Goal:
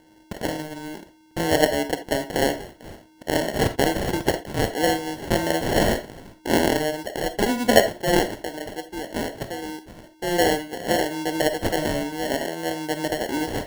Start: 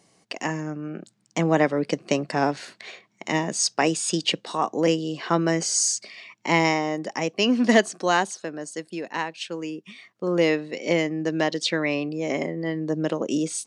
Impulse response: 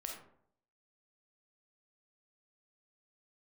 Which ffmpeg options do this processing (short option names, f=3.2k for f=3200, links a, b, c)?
-filter_complex "[0:a]bass=f=250:g=-10,treble=f=4k:g=2,aeval=exprs='val(0)+0.00178*sin(2*PI*910*n/s)':c=same,acrusher=samples=36:mix=1:aa=0.000001,asplit=2[a][b];[1:a]atrim=start_sample=2205,atrim=end_sample=3969[c];[b][c]afir=irnorm=-1:irlink=0,volume=2dB[d];[a][d]amix=inputs=2:normalize=0,volume=-3.5dB"